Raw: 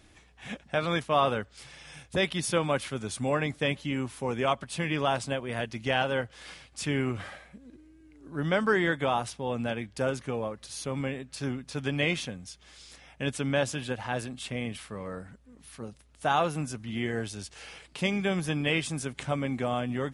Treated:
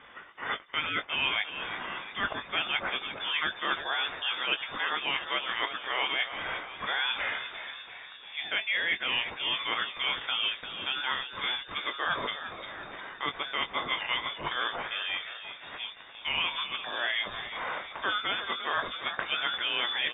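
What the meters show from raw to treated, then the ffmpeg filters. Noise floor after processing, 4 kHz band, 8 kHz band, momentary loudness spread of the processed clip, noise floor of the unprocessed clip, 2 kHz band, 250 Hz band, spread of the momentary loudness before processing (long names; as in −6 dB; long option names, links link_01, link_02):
−48 dBFS, +8.5 dB, below −40 dB, 10 LU, −58 dBFS, +4.0 dB, −15.5 dB, 17 LU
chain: -filter_complex "[0:a]highpass=160,tiltshelf=frequency=1100:gain=-9.5,areverse,acompressor=threshold=-34dB:ratio=10,areverse,asplit=2[link_01][link_02];[link_02]adelay=20,volume=-9dB[link_03];[link_01][link_03]amix=inputs=2:normalize=0,asplit=7[link_04][link_05][link_06][link_07][link_08][link_09][link_10];[link_05]adelay=348,afreqshift=-84,volume=-10.5dB[link_11];[link_06]adelay=696,afreqshift=-168,volume=-15.5dB[link_12];[link_07]adelay=1044,afreqshift=-252,volume=-20.6dB[link_13];[link_08]adelay=1392,afreqshift=-336,volume=-25.6dB[link_14];[link_09]adelay=1740,afreqshift=-420,volume=-30.6dB[link_15];[link_10]adelay=2088,afreqshift=-504,volume=-35.7dB[link_16];[link_04][link_11][link_12][link_13][link_14][link_15][link_16]amix=inputs=7:normalize=0,lowpass=frequency=3100:width_type=q:width=0.5098,lowpass=frequency=3100:width_type=q:width=0.6013,lowpass=frequency=3100:width_type=q:width=0.9,lowpass=frequency=3100:width_type=q:width=2.563,afreqshift=-3700,volume=8dB"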